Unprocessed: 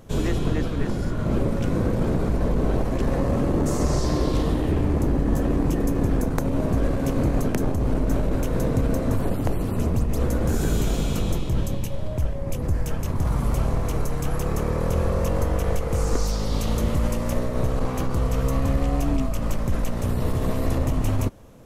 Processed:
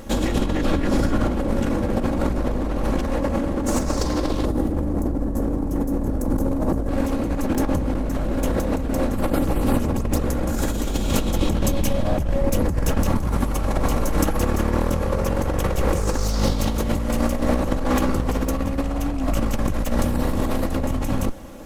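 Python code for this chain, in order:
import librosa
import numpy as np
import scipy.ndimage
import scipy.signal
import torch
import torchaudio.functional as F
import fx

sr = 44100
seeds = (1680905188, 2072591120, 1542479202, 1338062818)

y = fx.lower_of_two(x, sr, delay_ms=3.6)
y = fx.peak_eq(y, sr, hz=2800.0, db=-13.5, octaves=2.0, at=(4.45, 6.89))
y = fx.over_compress(y, sr, threshold_db=-28.0, ratio=-1.0)
y = y * 10.0 ** (7.0 / 20.0)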